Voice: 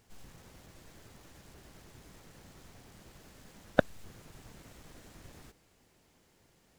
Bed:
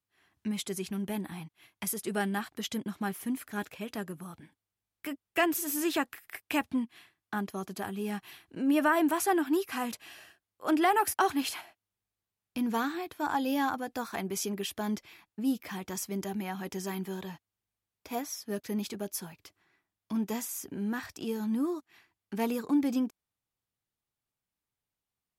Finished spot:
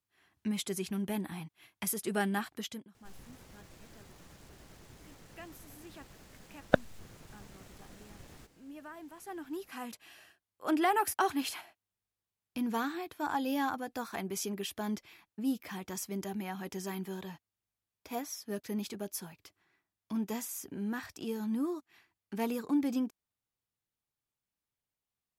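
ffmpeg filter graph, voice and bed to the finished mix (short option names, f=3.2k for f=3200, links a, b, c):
-filter_complex "[0:a]adelay=2950,volume=0dB[a];[1:a]volume=19dB,afade=t=out:st=2.5:d=0.38:silence=0.0794328,afade=t=in:st=9.16:d=1.42:silence=0.105925[b];[a][b]amix=inputs=2:normalize=0"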